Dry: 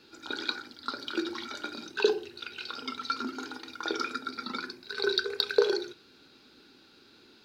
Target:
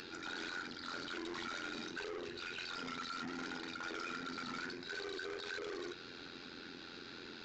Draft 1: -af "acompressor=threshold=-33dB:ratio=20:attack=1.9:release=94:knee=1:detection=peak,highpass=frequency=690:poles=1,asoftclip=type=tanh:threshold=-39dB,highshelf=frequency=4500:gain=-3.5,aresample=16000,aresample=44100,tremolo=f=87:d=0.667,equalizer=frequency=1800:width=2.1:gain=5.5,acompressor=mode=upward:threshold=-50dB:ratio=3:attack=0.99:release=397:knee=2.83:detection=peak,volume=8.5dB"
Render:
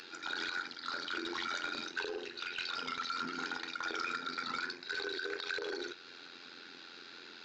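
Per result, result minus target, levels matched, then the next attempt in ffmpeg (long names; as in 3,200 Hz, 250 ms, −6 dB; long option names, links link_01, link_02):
soft clipping: distortion −6 dB; 500 Hz band −3.5 dB
-af "acompressor=threshold=-33dB:ratio=20:attack=1.9:release=94:knee=1:detection=peak,highpass=frequency=690:poles=1,asoftclip=type=tanh:threshold=-48dB,highshelf=frequency=4500:gain=-3.5,aresample=16000,aresample=44100,tremolo=f=87:d=0.667,equalizer=frequency=1800:width=2.1:gain=5.5,acompressor=mode=upward:threshold=-50dB:ratio=3:attack=0.99:release=397:knee=2.83:detection=peak,volume=8.5dB"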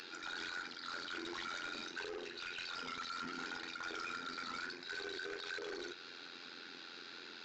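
500 Hz band −2.5 dB
-af "acompressor=threshold=-33dB:ratio=20:attack=1.9:release=94:knee=1:detection=peak,asoftclip=type=tanh:threshold=-48dB,highshelf=frequency=4500:gain=-3.5,aresample=16000,aresample=44100,tremolo=f=87:d=0.667,equalizer=frequency=1800:width=2.1:gain=5.5,acompressor=mode=upward:threshold=-50dB:ratio=3:attack=0.99:release=397:knee=2.83:detection=peak,volume=8.5dB"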